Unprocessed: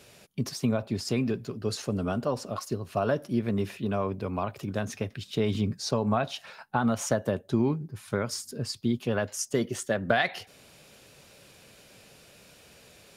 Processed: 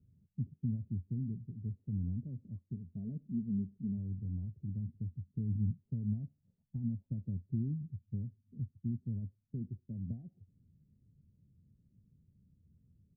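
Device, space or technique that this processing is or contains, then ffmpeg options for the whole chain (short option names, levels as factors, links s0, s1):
the neighbour's flat through the wall: -filter_complex "[0:a]lowpass=f=200:w=0.5412,lowpass=f=200:w=1.3066,equalizer=f=87:t=o:w=0.41:g=7,asplit=3[s0][s1][s2];[s0]afade=t=out:st=2.74:d=0.02[s3];[s1]aecho=1:1:4.6:0.62,afade=t=in:st=2.74:d=0.02,afade=t=out:st=3.97:d=0.02[s4];[s2]afade=t=in:st=3.97:d=0.02[s5];[s3][s4][s5]amix=inputs=3:normalize=0,volume=0.562"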